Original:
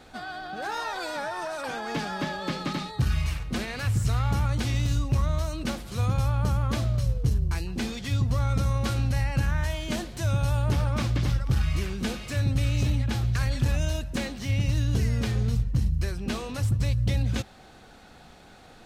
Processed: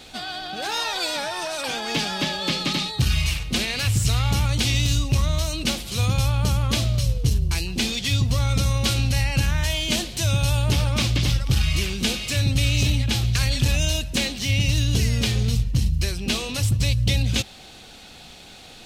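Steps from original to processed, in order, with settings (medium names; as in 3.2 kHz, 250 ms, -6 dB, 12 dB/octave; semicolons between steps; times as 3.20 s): resonant high shelf 2.1 kHz +8.5 dB, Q 1.5; trim +3.5 dB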